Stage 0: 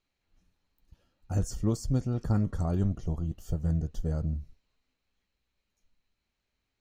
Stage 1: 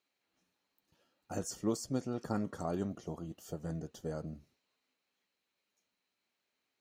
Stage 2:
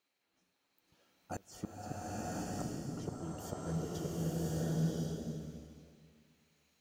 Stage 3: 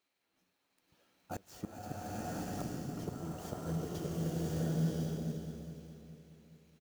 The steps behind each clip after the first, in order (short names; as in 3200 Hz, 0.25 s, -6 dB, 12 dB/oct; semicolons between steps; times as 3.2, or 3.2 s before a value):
HPF 280 Hz 12 dB/oct
flipped gate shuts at -28 dBFS, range -29 dB; bloom reverb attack 1.07 s, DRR -7.5 dB; gain +1 dB
feedback echo 0.418 s, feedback 47%, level -12 dB; clock jitter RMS 0.021 ms